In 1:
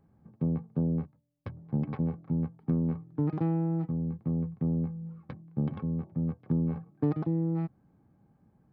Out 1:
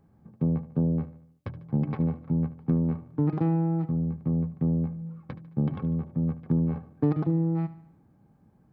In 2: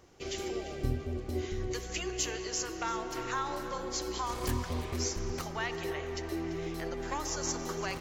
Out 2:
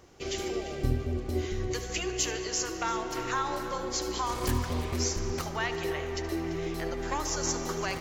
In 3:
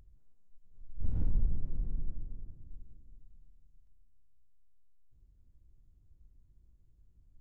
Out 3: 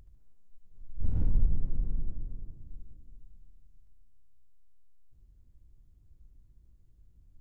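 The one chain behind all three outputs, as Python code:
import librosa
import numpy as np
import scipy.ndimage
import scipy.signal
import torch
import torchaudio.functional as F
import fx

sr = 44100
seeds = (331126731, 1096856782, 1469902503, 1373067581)

y = fx.echo_feedback(x, sr, ms=74, feedback_pct=50, wet_db=-15.5)
y = y * librosa.db_to_amplitude(3.5)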